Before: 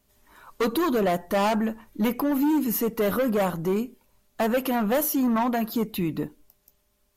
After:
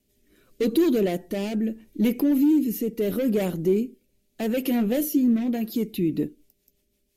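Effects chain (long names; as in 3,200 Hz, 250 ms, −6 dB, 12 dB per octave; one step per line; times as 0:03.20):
drawn EQ curve 100 Hz 0 dB, 360 Hz +8 dB, 1,100 Hz −14 dB, 2,300 Hz +2 dB
rotating-speaker cabinet horn 0.8 Hz, later 6 Hz, at 0:05.66
0:04.65–0:05.57: double-tracking delay 17 ms −11 dB
level −2 dB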